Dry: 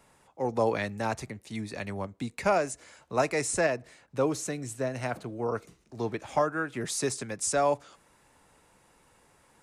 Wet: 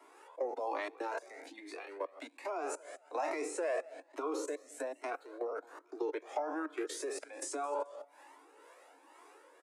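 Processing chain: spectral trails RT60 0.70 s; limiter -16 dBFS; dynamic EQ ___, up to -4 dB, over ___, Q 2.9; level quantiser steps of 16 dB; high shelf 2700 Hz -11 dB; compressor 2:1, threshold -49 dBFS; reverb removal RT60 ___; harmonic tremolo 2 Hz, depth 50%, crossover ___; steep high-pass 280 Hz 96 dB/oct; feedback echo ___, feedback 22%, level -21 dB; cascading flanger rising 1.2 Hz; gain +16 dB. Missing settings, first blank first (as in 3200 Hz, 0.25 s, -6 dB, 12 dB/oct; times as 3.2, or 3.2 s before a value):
1700 Hz, -43 dBFS, 0.5 s, 430 Hz, 0.217 s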